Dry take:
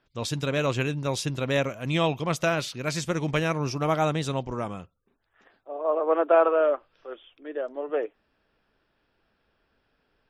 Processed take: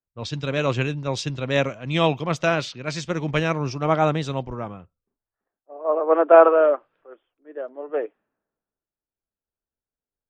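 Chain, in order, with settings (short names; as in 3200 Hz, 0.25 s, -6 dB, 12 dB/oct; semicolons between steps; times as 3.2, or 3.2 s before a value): low-pass opened by the level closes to 1200 Hz, open at -23 dBFS; running mean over 4 samples; three-band expander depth 70%; gain +3 dB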